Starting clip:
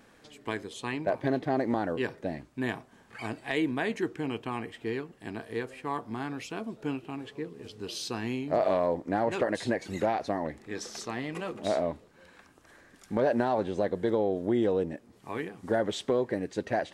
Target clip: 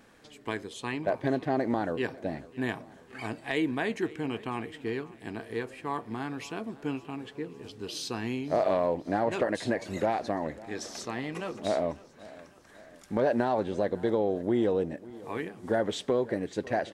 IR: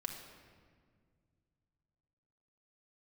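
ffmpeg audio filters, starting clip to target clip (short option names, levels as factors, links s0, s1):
-af "aecho=1:1:549|1098|1647|2196:0.1|0.053|0.0281|0.0149"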